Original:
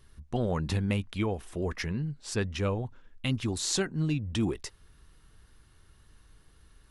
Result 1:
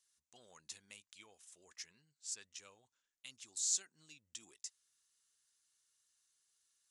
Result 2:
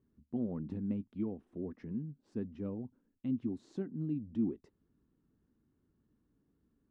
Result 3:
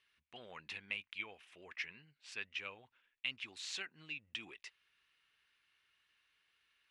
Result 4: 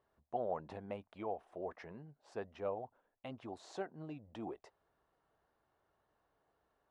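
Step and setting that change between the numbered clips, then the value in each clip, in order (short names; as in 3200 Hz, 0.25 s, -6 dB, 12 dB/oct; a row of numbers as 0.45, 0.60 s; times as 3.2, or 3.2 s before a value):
band-pass, frequency: 7100, 250, 2500, 690 Hz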